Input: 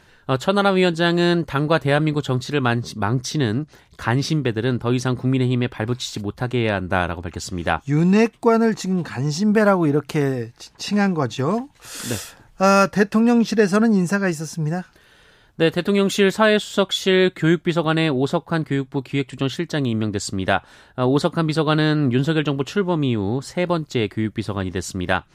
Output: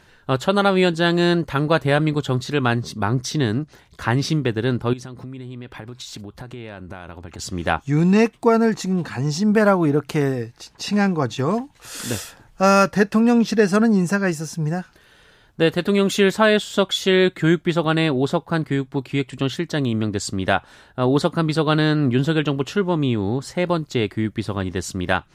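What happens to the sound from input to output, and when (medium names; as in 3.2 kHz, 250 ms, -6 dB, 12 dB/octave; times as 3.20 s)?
4.93–7.39 s: compression 10:1, threshold -31 dBFS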